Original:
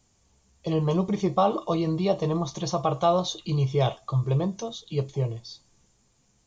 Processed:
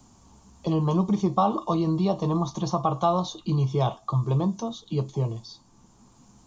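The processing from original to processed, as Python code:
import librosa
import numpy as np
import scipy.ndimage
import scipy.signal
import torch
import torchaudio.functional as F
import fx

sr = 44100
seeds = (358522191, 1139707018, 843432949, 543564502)

y = fx.graphic_eq(x, sr, hz=(250, 500, 1000, 2000), db=(8, -6, 9, -9))
y = fx.band_squash(y, sr, depth_pct=40)
y = y * 10.0 ** (-1.5 / 20.0)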